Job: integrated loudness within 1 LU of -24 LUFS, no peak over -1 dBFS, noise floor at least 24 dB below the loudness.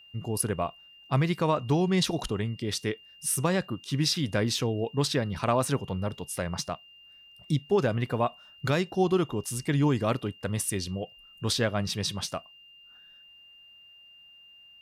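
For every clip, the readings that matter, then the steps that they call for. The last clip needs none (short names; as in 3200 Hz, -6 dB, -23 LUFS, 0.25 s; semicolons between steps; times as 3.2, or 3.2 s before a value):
steady tone 2800 Hz; tone level -51 dBFS; loudness -28.5 LUFS; peak -14.5 dBFS; loudness target -24.0 LUFS
-> notch 2800 Hz, Q 30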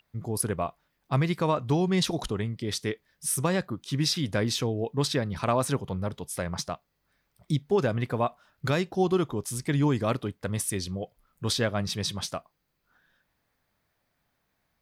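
steady tone none; loudness -28.5 LUFS; peak -14.0 dBFS; loudness target -24.0 LUFS
-> gain +4.5 dB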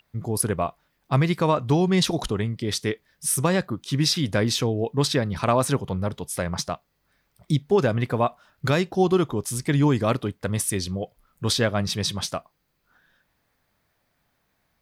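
loudness -24.0 LUFS; peak -9.5 dBFS; noise floor -72 dBFS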